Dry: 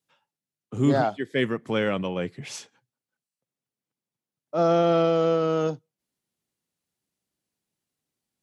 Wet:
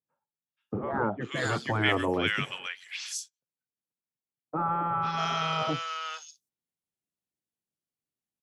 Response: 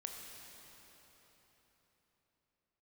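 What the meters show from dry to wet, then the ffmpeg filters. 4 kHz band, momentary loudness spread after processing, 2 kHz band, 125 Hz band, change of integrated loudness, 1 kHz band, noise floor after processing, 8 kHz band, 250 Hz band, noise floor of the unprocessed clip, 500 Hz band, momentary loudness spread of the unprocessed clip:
+4.0 dB, 11 LU, +4.0 dB, -5.0 dB, -6.0 dB, +0.5 dB, under -85 dBFS, +4.5 dB, -7.5 dB, under -85 dBFS, -10.5 dB, 17 LU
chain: -filter_complex "[0:a]agate=range=-17dB:threshold=-45dB:ratio=16:detection=peak,acrossover=split=1400|4700[a][b][c];[b]adelay=480[d];[c]adelay=610[e];[a][d][e]amix=inputs=3:normalize=0,afftfilt=real='re*lt(hypot(re,im),0.2)':imag='im*lt(hypot(re,im),0.2)':win_size=1024:overlap=0.75,volume=6dB"

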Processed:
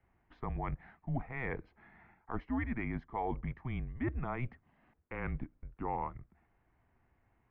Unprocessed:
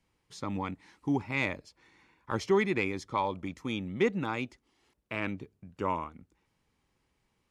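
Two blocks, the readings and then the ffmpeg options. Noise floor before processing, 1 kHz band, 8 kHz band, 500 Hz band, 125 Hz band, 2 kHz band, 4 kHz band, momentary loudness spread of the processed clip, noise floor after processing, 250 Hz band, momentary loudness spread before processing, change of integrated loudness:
-77 dBFS, -5.5 dB, under -25 dB, -11.5 dB, 0.0 dB, -8.5 dB, under -20 dB, 8 LU, -75 dBFS, -6.5 dB, 13 LU, -7.0 dB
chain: -af "areverse,acompressor=threshold=-37dB:ratio=5,areverse,afreqshift=-130,lowpass=f=2k:w=0.5412,lowpass=f=2k:w=1.3066,volume=4dB"

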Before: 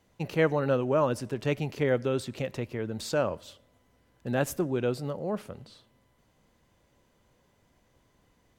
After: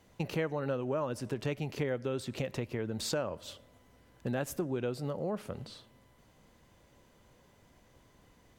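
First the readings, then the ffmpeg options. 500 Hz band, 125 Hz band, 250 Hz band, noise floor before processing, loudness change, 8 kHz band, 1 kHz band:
-7.0 dB, -4.5 dB, -5.0 dB, -68 dBFS, -6.5 dB, -1.5 dB, -7.0 dB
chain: -af "acompressor=threshold=-36dB:ratio=4,volume=4dB"

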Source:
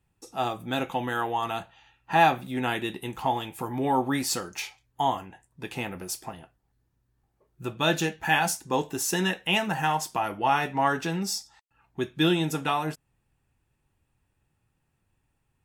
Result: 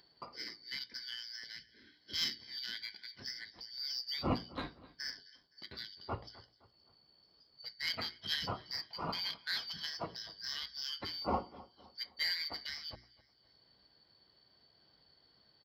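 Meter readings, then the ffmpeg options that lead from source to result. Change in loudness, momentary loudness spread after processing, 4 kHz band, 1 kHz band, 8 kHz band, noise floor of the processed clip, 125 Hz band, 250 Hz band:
-12.0 dB, 14 LU, -4.0 dB, -19.5 dB, -19.5 dB, -70 dBFS, -15.5 dB, -17.5 dB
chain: -filter_complex "[0:a]afftfilt=real='real(if(lt(b,272),68*(eq(floor(b/68),0)*3+eq(floor(b/68),1)*2+eq(floor(b/68),2)*1+eq(floor(b/68),3)*0)+mod(b,68),b),0)':imag='imag(if(lt(b,272),68*(eq(floor(b/68),0)*3+eq(floor(b/68),1)*2+eq(floor(b/68),2)*1+eq(floor(b/68),3)*0)+mod(b,68),b),0)':win_size=2048:overlap=0.75,highpass=f=44:w=0.5412,highpass=f=44:w=1.3066,lowshelf=f=61:g=-2.5,bandreject=f=60:t=h:w=6,bandreject=f=120:t=h:w=6,bandreject=f=180:t=h:w=6,bandreject=f=240:t=h:w=6,bandreject=f=300:t=h:w=6,bandreject=f=360:t=h:w=6,bandreject=f=420:t=h:w=6,aresample=11025,aresample=44100,asplit=2[a][b];[b]alimiter=limit=-19.5dB:level=0:latency=1:release=27,volume=-2.5dB[c];[a][c]amix=inputs=2:normalize=0,acompressor=mode=upward:threshold=-28dB:ratio=2.5,equalizer=f=2.4k:t=o:w=2.8:g=-11,asplit=2[d][e];[e]aecho=0:1:258|516|774:0.106|0.0455|0.0196[f];[d][f]amix=inputs=2:normalize=0,adynamicsmooth=sensitivity=1:basefreq=2k,volume=1.5dB"

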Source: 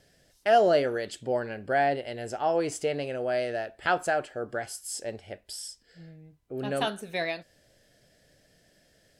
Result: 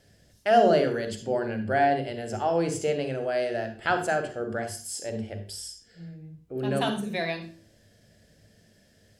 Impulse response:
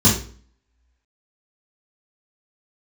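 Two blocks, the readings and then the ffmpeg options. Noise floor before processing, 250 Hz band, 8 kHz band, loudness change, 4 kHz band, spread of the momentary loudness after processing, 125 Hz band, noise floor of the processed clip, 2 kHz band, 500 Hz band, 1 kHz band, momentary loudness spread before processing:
-65 dBFS, +5.5 dB, +1.0 dB, +1.5 dB, +1.0 dB, 16 LU, +6.5 dB, -61 dBFS, +0.5 dB, +1.5 dB, +1.5 dB, 15 LU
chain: -filter_complex "[0:a]asplit=2[a][b];[1:a]atrim=start_sample=2205,adelay=40[c];[b][c]afir=irnorm=-1:irlink=0,volume=-26dB[d];[a][d]amix=inputs=2:normalize=0"

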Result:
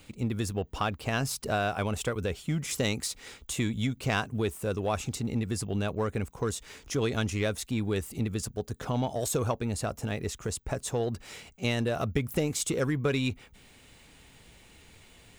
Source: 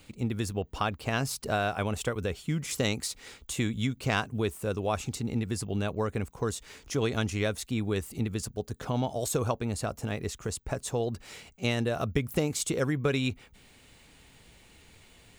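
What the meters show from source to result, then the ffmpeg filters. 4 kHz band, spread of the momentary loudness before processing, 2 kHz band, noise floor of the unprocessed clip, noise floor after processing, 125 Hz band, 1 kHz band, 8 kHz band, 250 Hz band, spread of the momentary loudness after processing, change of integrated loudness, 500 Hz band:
0.0 dB, 6 LU, 0.0 dB, -57 dBFS, -56 dBFS, +0.5 dB, 0.0 dB, +1.0 dB, 0.0 dB, 5 LU, 0.0 dB, 0.0 dB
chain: -filter_complex "[0:a]bandreject=f=4.4k:w=27,asplit=2[a][b];[b]volume=29dB,asoftclip=hard,volume=-29dB,volume=-7dB[c];[a][c]amix=inputs=2:normalize=0,volume=-2dB"

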